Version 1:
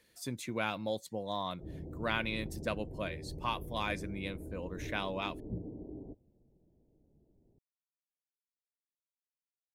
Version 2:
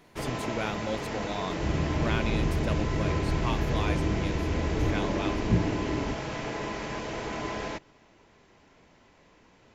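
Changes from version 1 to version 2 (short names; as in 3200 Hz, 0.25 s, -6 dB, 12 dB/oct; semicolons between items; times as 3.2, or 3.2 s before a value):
first sound: unmuted; second sound +10.5 dB; master: add low shelf 300 Hz +6.5 dB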